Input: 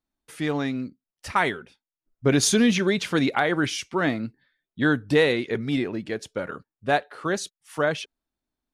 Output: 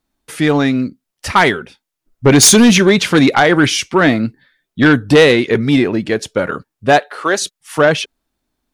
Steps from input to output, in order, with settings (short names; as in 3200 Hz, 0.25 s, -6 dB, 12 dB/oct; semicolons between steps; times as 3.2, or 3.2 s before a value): 2.39–2.82 high shelf 4300 Hz -> 6700 Hz +7 dB; 6.99–7.42 Bessel high-pass 450 Hz, order 2; sine folder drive 7 dB, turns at -5.5 dBFS; gain +2.5 dB